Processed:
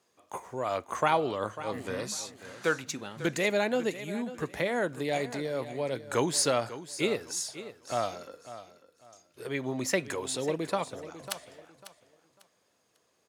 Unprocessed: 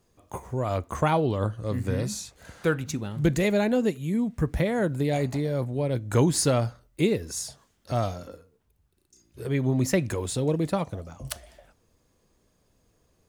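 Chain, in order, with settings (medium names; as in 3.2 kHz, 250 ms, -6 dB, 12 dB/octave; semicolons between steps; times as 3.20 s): frequency weighting A; on a send: feedback delay 547 ms, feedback 26%, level -14 dB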